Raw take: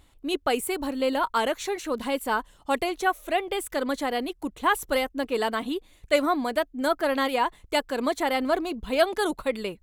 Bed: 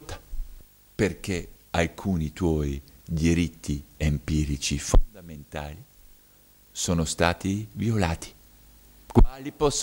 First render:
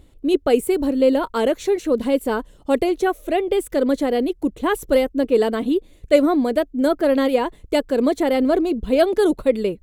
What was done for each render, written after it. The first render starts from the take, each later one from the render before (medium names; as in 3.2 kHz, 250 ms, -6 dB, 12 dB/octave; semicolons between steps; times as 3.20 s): resonant low shelf 660 Hz +9 dB, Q 1.5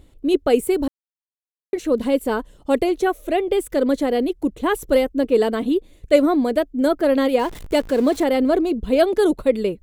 0.88–1.73 s: mute; 7.39–8.24 s: jump at every zero crossing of -32.5 dBFS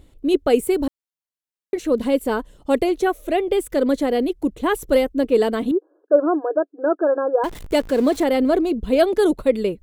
5.71–7.44 s: brick-wall FIR band-pass 290–1700 Hz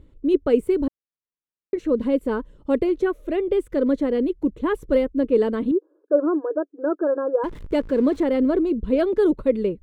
low-pass 1 kHz 6 dB/octave; peaking EQ 730 Hz -13 dB 0.3 oct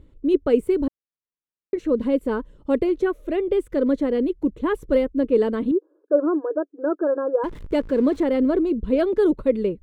no audible change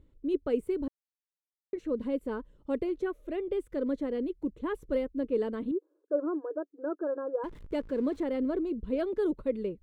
trim -10.5 dB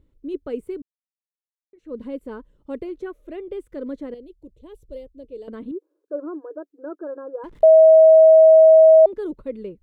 0.82–1.95 s: fade in exponential; 4.14–5.48 s: FFT filter 120 Hz 0 dB, 200 Hz -15 dB, 600 Hz -5 dB, 1 kHz -17 dB, 1.5 kHz -24 dB, 2.4 kHz -10 dB, 3.6 kHz -3 dB; 7.63–9.06 s: bleep 639 Hz -6.5 dBFS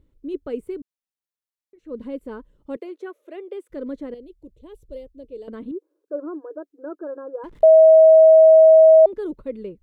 2.76–3.70 s: high-pass 370 Hz 24 dB/octave